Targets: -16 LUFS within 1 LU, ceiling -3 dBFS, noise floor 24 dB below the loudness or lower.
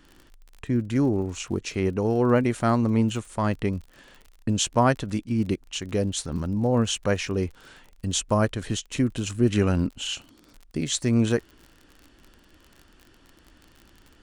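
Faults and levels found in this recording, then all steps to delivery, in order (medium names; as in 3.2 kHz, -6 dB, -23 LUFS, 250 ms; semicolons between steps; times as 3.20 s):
tick rate 40 per s; loudness -25.5 LUFS; peak level -7.5 dBFS; loudness target -16.0 LUFS
-> de-click; trim +9.5 dB; peak limiter -3 dBFS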